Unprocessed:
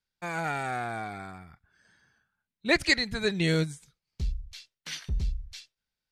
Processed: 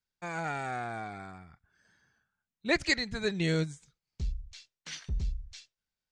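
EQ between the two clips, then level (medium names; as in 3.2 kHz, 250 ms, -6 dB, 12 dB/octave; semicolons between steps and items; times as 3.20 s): resonant low-pass 7.2 kHz, resonance Q 2.3; treble shelf 3.7 kHz -8 dB; -3.0 dB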